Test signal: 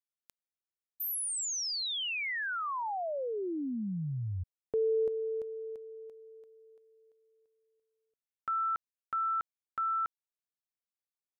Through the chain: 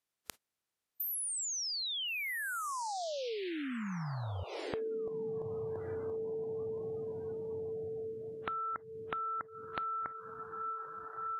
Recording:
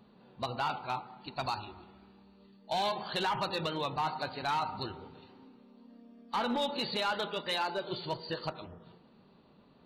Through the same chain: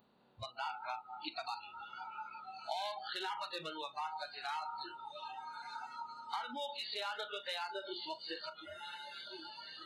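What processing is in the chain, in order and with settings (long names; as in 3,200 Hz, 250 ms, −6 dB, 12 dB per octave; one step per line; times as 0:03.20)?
compressor on every frequency bin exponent 0.6
feedback delay with all-pass diffusion 1,365 ms, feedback 49%, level −9 dB
downward compressor 10 to 1, threshold −38 dBFS
noise reduction from a noise print of the clip's start 28 dB
level +2.5 dB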